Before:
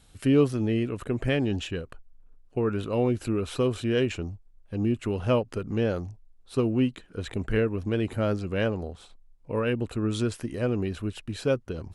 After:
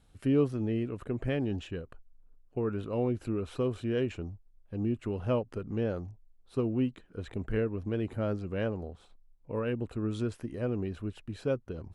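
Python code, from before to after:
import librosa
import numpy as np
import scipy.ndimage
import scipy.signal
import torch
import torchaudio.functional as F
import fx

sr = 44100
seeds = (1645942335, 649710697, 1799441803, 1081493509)

y = fx.high_shelf(x, sr, hz=2200.0, db=-9.0)
y = y * librosa.db_to_amplitude(-5.0)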